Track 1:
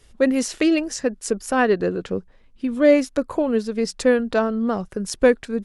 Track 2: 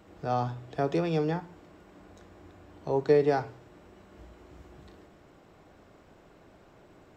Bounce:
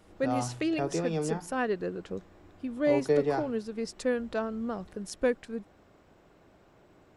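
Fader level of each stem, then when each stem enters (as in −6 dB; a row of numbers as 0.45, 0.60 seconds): −11.5, −3.5 decibels; 0.00, 0.00 seconds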